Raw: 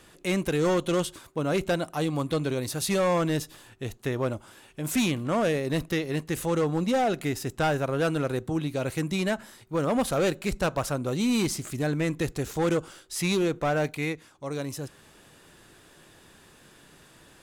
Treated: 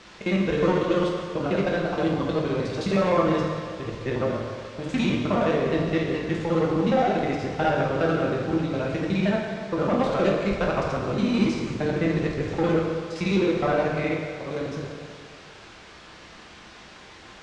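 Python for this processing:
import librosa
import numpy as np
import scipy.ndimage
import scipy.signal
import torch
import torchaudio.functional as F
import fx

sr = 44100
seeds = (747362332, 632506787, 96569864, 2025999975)

y = fx.local_reverse(x, sr, ms=52.0)
y = fx.dmg_noise_colour(y, sr, seeds[0], colour='white', level_db=-43.0)
y = scipy.ndimage.gaussian_filter1d(y, 1.9, mode='constant')
y = fx.rev_fdn(y, sr, rt60_s=2.2, lf_ratio=0.8, hf_ratio=0.75, size_ms=90.0, drr_db=-1.5)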